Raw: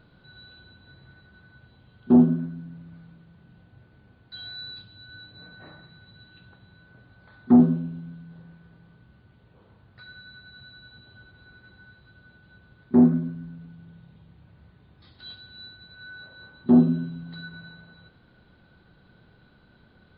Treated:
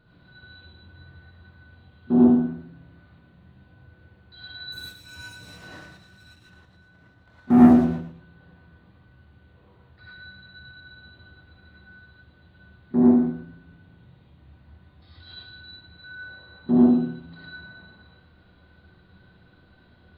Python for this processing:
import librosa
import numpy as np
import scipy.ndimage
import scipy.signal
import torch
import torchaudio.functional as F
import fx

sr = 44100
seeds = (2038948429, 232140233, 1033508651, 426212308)

y = fx.leveller(x, sr, passes=2, at=(4.72, 7.9))
y = fx.echo_feedback(y, sr, ms=115, feedback_pct=24, wet_db=-9.5)
y = fx.rev_gated(y, sr, seeds[0], gate_ms=130, shape='rising', drr_db=-7.0)
y = y * 10.0 ** (-6.5 / 20.0)